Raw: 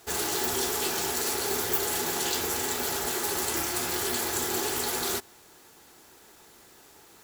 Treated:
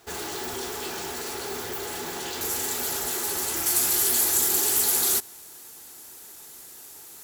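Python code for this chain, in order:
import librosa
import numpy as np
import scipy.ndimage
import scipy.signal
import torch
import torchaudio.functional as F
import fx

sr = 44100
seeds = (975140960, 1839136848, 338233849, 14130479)

y = 10.0 ** (-26.0 / 20.0) * np.tanh(x / 10.0 ** (-26.0 / 20.0))
y = fx.peak_eq(y, sr, hz=12000.0, db=fx.steps((0.0, -4.5), (2.41, 6.5), (3.66, 15.0)), octaves=1.8)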